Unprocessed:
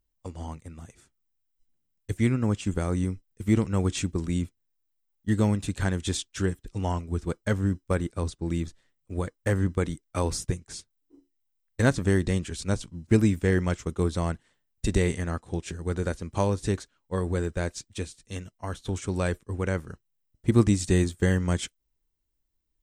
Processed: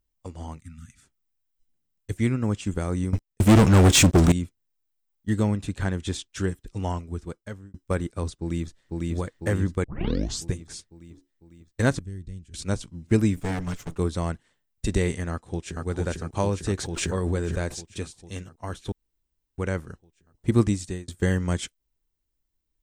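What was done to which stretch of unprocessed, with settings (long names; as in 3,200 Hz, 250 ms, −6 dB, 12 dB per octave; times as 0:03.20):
0:00.61–0:01.03: time-frequency box erased 280–1,200 Hz
0:03.13–0:04.32: leveller curve on the samples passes 5
0:05.43–0:06.30: high-shelf EQ 4,500 Hz −6.5 dB
0:06.87–0:07.74: fade out
0:08.36–0:09.12: delay throw 500 ms, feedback 60%, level −1 dB
0:09.84: tape start 0.61 s
0:11.99–0:12.54: guitar amp tone stack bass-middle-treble 10-0-1
0:13.36–0:13.98: lower of the sound and its delayed copy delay 6.9 ms
0:15.31–0:15.85: delay throw 450 ms, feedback 70%, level −2 dB
0:16.79–0:17.89: background raised ahead of every attack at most 22 dB per second
0:18.92–0:19.58: fill with room tone
0:20.61–0:21.08: fade out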